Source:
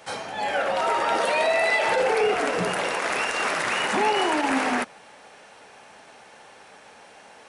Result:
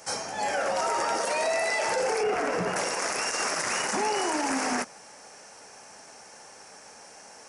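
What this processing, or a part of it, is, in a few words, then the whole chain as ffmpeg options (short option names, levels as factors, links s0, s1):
over-bright horn tweeter: -filter_complex "[0:a]asettb=1/sr,asplit=3[s0][s1][s2];[s0]atrim=end=2.234[s3];[s1]atrim=start=2.23:end=2.76,asetpts=PTS-STARTPTS,afade=t=in:d=0.004:c=qsin,afade=t=out:st=0.526:d=0.004:c=qsin,acrossover=split=3300[s4][s5];[s5]acompressor=threshold=0.00316:ratio=4:attack=1:release=60[s6];[s4][s6]amix=inputs=2:normalize=0[s7];[s2]atrim=start=2.756[s8];[s3][s7]acrossfade=d=0.004:c1=hsin:c2=qsin[s9];[s9][s8]acrossfade=d=0.004:c1=qsin:c2=hsin,highshelf=f=4500:t=q:w=3:g=7,alimiter=limit=0.141:level=0:latency=1:release=32,volume=0.841"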